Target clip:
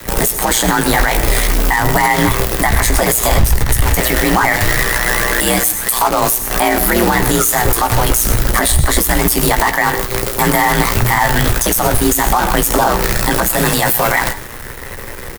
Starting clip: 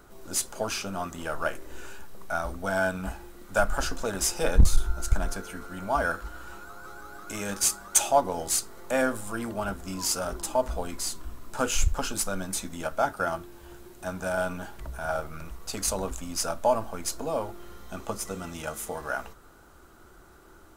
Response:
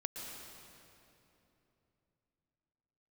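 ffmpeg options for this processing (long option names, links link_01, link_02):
-filter_complex "[0:a]highshelf=frequency=7600:gain=10,acompressor=threshold=-31dB:ratio=6,aeval=exprs='val(0)*sin(2*PI*44*n/s)':channel_layout=same,acrusher=bits=8:dc=4:mix=0:aa=0.000001,afreqshift=-17,asplit=2[link_01][link_02];[link_02]adelay=20,volume=-9.5dB[link_03];[link_01][link_03]amix=inputs=2:normalize=0,asplit=2[link_04][link_05];[1:a]atrim=start_sample=2205,afade=type=out:start_time=0.27:duration=0.01,atrim=end_sample=12348[link_06];[link_05][link_06]afir=irnorm=-1:irlink=0,volume=-7dB[link_07];[link_04][link_07]amix=inputs=2:normalize=0,asetrate=59535,aresample=44100,alimiter=level_in=29.5dB:limit=-1dB:release=50:level=0:latency=1,volume=-1.5dB"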